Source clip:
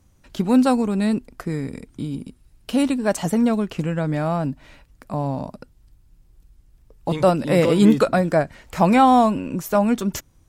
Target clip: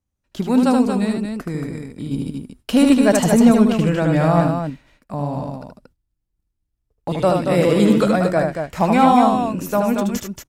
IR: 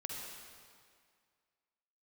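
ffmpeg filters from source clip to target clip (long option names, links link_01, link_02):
-filter_complex "[0:a]agate=range=-22dB:threshold=-44dB:ratio=16:detection=peak,asettb=1/sr,asplit=3[link_01][link_02][link_03];[link_01]atrim=end=2.114[link_04];[link_02]atrim=start=2.11:end=4.47,asetpts=PTS-STARTPTS,afade=type=in:duration=0.004:curve=qsin,afade=type=out:start_time=2.356:duration=0.004:curve=qsin,acontrast=65[link_05];[link_03]atrim=start=4.466[link_06];[link_04][link_05]acrossfade=duration=0.004:curve1=hsin:curve2=qsin[link_07];[link_07][link_06]acrossfade=duration=0.004:curve1=qsin:curve2=hsin,aecho=1:1:75.8|230.3:0.631|0.501,volume=-1dB"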